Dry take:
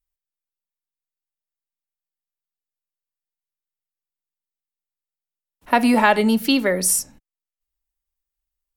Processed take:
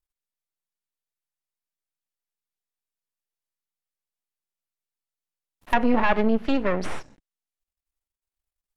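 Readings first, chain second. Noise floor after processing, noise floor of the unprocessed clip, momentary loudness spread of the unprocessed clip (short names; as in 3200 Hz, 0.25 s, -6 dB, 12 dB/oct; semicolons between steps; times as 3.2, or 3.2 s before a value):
under -85 dBFS, under -85 dBFS, 6 LU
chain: half-wave rectifier; treble ducked by the level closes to 2100 Hz, closed at -18.5 dBFS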